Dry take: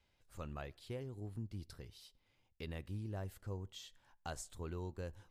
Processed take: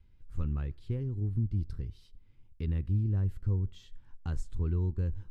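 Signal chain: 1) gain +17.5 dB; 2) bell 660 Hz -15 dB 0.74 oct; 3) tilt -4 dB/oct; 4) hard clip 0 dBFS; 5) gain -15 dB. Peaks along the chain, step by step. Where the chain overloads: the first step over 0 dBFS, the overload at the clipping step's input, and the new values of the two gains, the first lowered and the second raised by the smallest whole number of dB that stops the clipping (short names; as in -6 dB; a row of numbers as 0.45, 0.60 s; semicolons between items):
-12.5, -12.5, -6.0, -6.0, -21.0 dBFS; no overload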